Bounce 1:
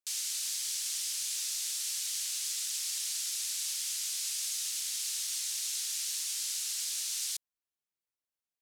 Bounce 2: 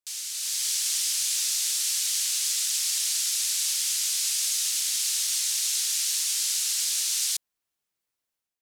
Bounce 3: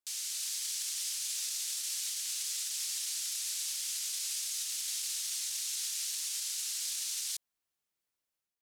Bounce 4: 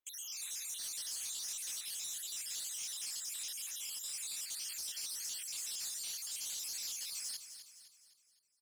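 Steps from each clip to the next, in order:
level rider gain up to 8.5 dB
peak limiter -23.5 dBFS, peak gain reduction 9 dB; trim -3.5 dB
random holes in the spectrogram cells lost 60%; saturation -36 dBFS, distortion -15 dB; feedback delay 256 ms, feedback 46%, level -10 dB

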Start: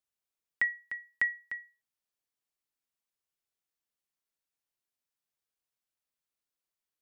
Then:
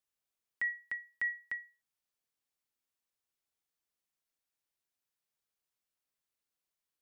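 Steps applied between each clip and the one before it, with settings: peak limiter -27.5 dBFS, peak gain reduction 9 dB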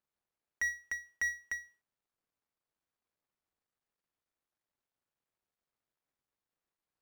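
median filter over 15 samples; trim +4.5 dB

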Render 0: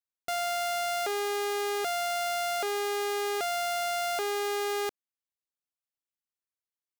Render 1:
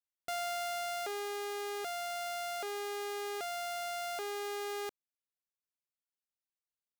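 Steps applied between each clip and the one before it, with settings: gain riding 2 s; trim -8 dB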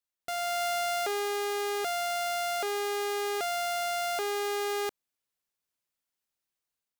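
level rider gain up to 5 dB; trim +2.5 dB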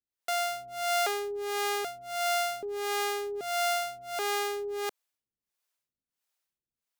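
harmonic tremolo 1.5 Hz, depth 100%, crossover 410 Hz; trim +4.5 dB

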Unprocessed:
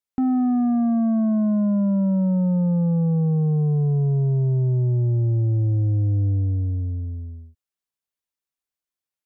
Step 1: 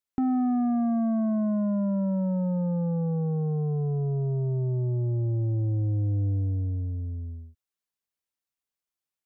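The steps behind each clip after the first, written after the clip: dynamic bell 150 Hz, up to -6 dB, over -33 dBFS, Q 0.87; trim -1.5 dB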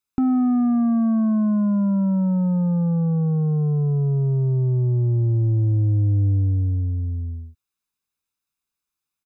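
comb 0.8 ms, depth 51%; trim +4 dB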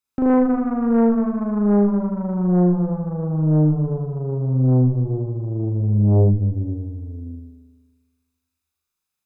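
flutter echo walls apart 6.7 m, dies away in 1.4 s; Chebyshev shaper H 4 -8 dB, 5 -15 dB, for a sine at -2 dBFS; trim -7.5 dB

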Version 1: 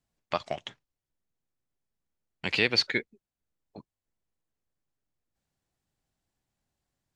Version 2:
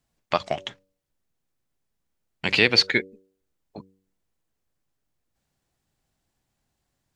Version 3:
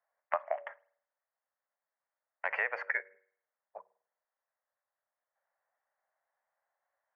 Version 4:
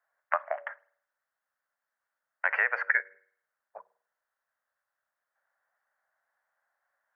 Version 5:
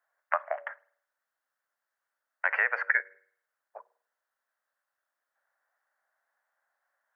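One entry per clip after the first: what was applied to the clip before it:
de-hum 95.46 Hz, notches 6; trim +6.5 dB
elliptic band-pass 570–1900 Hz, stop band 40 dB; compression, threshold -28 dBFS, peak gain reduction 10.5 dB; on a send at -23 dB: reverberation, pre-delay 49 ms
peaking EQ 1.5 kHz +11 dB 0.73 oct
high-pass 250 Hz 24 dB/octave

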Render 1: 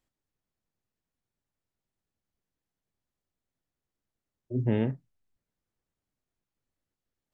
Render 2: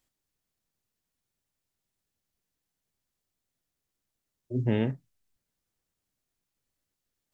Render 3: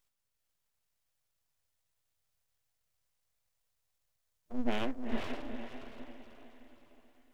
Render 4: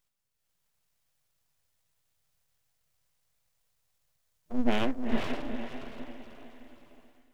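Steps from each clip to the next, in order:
treble shelf 2.6 kHz +8.5 dB
echo that smears into a reverb 466 ms, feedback 44%, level -3 dB; FFT band-reject 160–450 Hz; full-wave rectifier; trim +1 dB
peaking EQ 160 Hz +5.5 dB 0.52 oct; level rider gain up to 5.5 dB

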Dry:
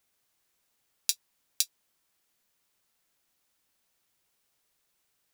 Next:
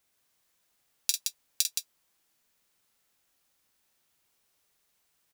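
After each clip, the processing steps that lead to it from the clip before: multi-tap echo 47/170 ms -6/-5 dB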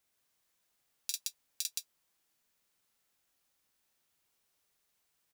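peak limiter -8.5 dBFS, peak gain reduction 6.5 dB; trim -4.5 dB

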